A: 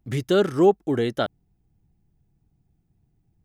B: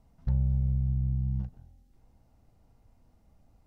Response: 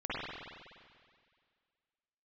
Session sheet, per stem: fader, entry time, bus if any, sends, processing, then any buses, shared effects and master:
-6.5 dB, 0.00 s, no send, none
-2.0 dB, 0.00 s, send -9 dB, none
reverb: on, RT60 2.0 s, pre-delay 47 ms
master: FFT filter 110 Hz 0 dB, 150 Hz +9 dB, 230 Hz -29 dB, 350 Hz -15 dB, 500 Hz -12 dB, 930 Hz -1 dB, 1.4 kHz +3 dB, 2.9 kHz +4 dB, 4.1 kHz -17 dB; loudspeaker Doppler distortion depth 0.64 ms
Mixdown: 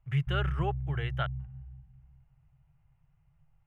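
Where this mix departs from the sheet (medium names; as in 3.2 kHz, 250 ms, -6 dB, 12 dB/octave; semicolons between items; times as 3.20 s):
stem B -2.0 dB -> -10.0 dB; master: missing loudspeaker Doppler distortion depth 0.64 ms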